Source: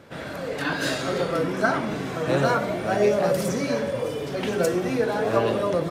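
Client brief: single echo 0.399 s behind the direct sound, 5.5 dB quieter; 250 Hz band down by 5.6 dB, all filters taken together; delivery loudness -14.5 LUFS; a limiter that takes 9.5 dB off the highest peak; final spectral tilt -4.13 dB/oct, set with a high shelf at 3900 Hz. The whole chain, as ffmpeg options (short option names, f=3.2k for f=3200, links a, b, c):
-af "equalizer=f=250:t=o:g=-8,highshelf=f=3.9k:g=3.5,alimiter=limit=-18dB:level=0:latency=1,aecho=1:1:399:0.531,volume=12.5dB"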